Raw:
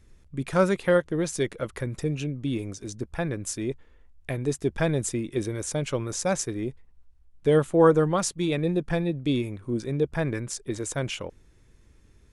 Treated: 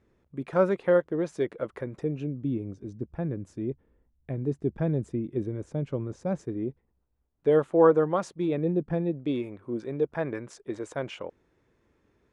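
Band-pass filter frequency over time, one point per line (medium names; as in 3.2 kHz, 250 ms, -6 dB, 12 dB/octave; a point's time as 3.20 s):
band-pass filter, Q 0.6
1.94 s 530 Hz
2.55 s 190 Hz
6.30 s 190 Hz
7.56 s 630 Hz
8.17 s 630 Hz
8.87 s 240 Hz
9.34 s 670 Hz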